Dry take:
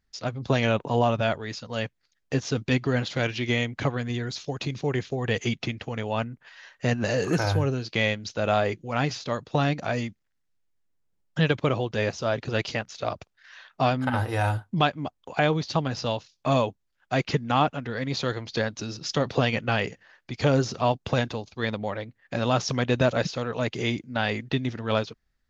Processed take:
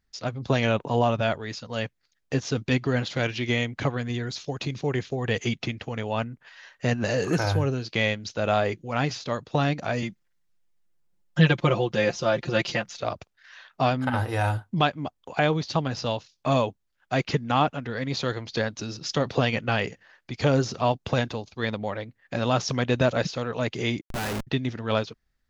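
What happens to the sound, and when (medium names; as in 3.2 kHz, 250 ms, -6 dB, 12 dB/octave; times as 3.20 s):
10.02–12.99 s: comb 5.7 ms, depth 92%
24.01–24.47 s: Schmitt trigger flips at -32.5 dBFS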